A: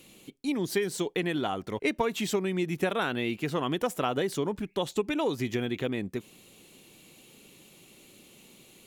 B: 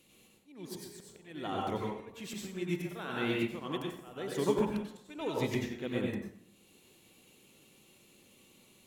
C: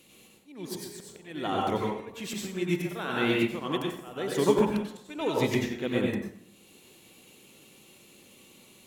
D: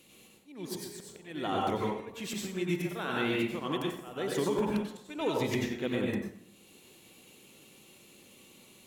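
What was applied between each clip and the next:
auto swell 0.527 s; plate-style reverb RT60 0.85 s, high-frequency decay 0.6×, pre-delay 80 ms, DRR -2.5 dB; upward expander 1.5:1, over -45 dBFS
low shelf 110 Hz -5 dB; gain +7 dB
limiter -19.5 dBFS, peak gain reduction 10.5 dB; gain -1.5 dB

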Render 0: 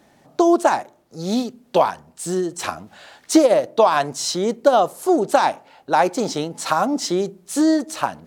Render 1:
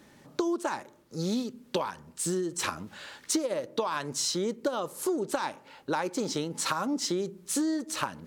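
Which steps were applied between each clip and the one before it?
bell 710 Hz -14.5 dB 0.31 oct; compressor 6:1, threshold -27 dBFS, peak gain reduction 17 dB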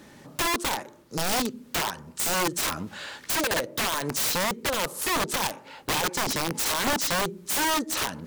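wrapped overs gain 27 dB; gain +6.5 dB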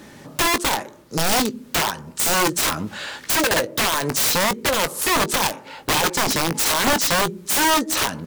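doubler 19 ms -13 dB; gain +6.5 dB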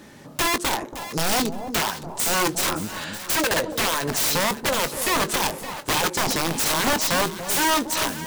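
echo with dull and thin repeats by turns 0.283 s, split 880 Hz, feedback 52%, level -7.5 dB; gain -3 dB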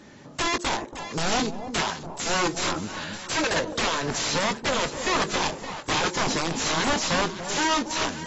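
gain -3 dB; AAC 24 kbps 22050 Hz

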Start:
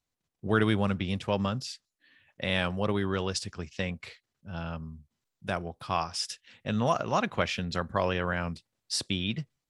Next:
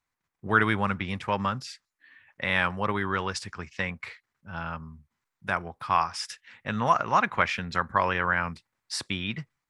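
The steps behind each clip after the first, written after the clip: band shelf 1400 Hz +10 dB; gain -2 dB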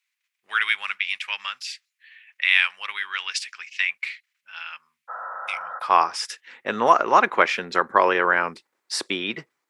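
high-pass sweep 2500 Hz -> 370 Hz, 5.4–5.97; spectral repair 5.12–5.77, 210–2000 Hz after; gain +5 dB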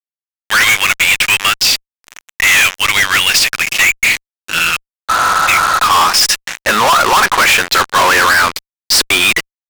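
tilt shelf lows -9.5 dB, about 650 Hz; fuzz box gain 33 dB, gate -34 dBFS; gain +5.5 dB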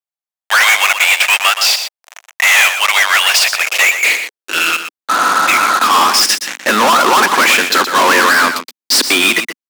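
high-pass sweep 690 Hz -> 250 Hz, 3.38–5.14; on a send: echo 0.121 s -9 dB; on the sum: gain -1 dB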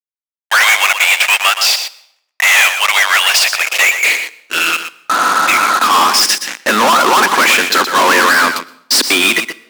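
gate -25 dBFS, range -35 dB; reverb RT60 0.75 s, pre-delay 0.103 s, DRR 21.5 dB

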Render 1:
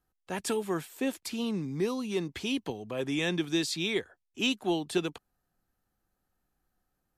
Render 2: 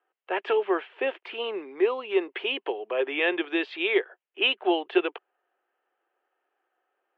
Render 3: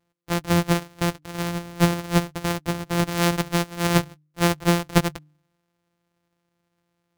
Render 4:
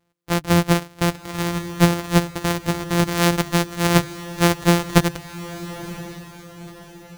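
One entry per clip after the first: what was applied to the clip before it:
Chebyshev band-pass 370–3000 Hz, order 4; gain +8.5 dB
sample sorter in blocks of 256 samples; de-hum 150.4 Hz, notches 2; gain +4 dB
diffused feedback echo 0.986 s, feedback 42%, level -14.5 dB; gain +3.5 dB

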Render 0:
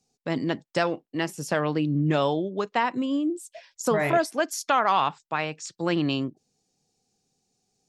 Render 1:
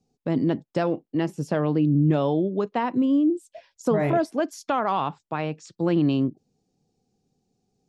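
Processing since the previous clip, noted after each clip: EQ curve 280 Hz 0 dB, 1900 Hz -11 dB, 3200 Hz -8 dB; in parallel at +1 dB: limiter -22 dBFS, peak gain reduction 8 dB; on the sum: high shelf 4700 Hz -12 dB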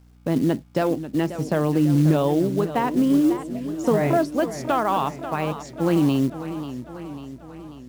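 hum 60 Hz, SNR 29 dB; companded quantiser 6-bit; warbling echo 0.542 s, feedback 59%, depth 131 cents, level -12 dB; gain +2 dB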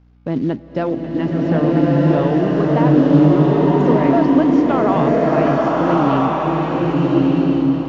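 air absorption 210 m; downsampling 16000 Hz; bloom reverb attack 1.37 s, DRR -5 dB; gain +1.5 dB

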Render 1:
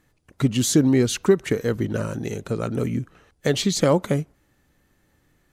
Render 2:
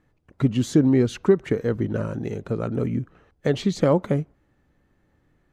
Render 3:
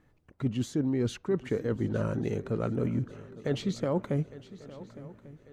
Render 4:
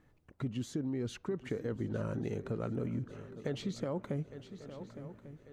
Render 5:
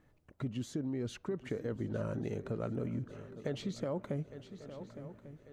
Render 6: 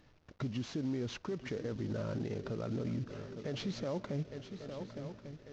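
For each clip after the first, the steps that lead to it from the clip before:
LPF 1400 Hz 6 dB/oct
reverse; compressor 6:1, threshold -26 dBFS, peak gain reduction 14.5 dB; reverse; swung echo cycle 1.144 s, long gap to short 3:1, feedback 42%, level -17.5 dB
compressor, threshold -31 dBFS, peak gain reduction 8.5 dB; gain -1.5 dB
bell 610 Hz +4.5 dB 0.23 oct; gain -1 dB
CVSD 32 kbps; limiter -32.5 dBFS, peak gain reduction 8.5 dB; gain +3.5 dB

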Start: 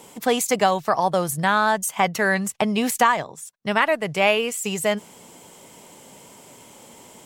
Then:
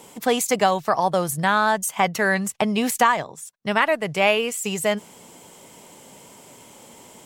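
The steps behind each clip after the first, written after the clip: nothing audible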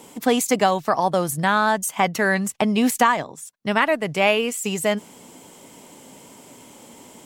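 bell 270 Hz +6.5 dB 0.56 oct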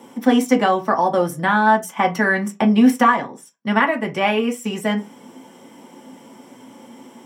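reverb RT60 0.25 s, pre-delay 3 ms, DRR 1.5 dB; gain -8.5 dB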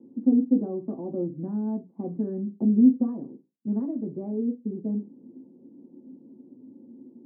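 ladder low-pass 370 Hz, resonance 50%

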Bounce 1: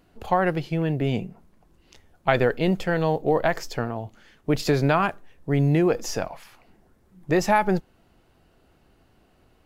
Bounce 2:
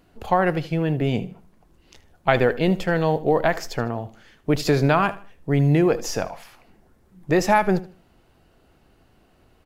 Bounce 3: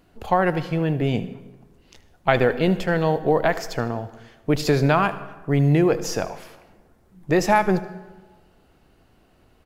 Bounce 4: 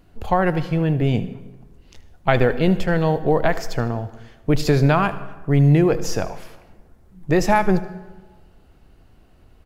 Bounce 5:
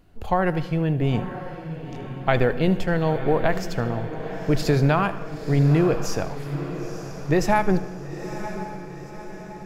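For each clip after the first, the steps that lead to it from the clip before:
feedback echo 77 ms, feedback 30%, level -17 dB; gain +2 dB
plate-style reverb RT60 1.3 s, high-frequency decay 0.6×, pre-delay 90 ms, DRR 16.5 dB
low shelf 110 Hz +11.5 dB
diffused feedback echo 0.947 s, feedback 53%, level -11 dB; gain -3 dB

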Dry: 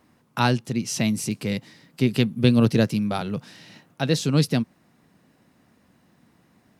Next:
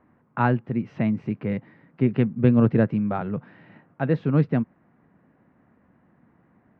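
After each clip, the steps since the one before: LPF 1900 Hz 24 dB/oct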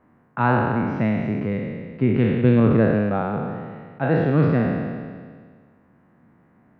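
spectral trails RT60 1.79 s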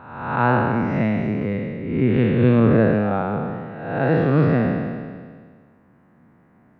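spectral swells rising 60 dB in 0.94 s

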